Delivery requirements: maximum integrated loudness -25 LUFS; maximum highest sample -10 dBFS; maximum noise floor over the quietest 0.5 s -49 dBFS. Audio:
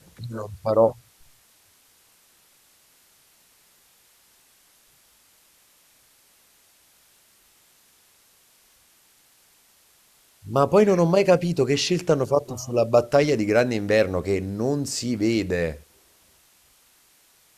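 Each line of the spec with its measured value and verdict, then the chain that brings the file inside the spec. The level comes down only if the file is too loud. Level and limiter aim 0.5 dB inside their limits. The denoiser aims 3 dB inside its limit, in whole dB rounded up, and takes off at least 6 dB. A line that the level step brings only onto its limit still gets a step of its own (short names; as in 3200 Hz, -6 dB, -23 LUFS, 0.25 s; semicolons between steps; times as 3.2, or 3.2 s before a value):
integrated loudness -22.0 LUFS: fail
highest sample -4.0 dBFS: fail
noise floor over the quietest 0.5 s -59 dBFS: OK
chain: gain -3.5 dB; limiter -10.5 dBFS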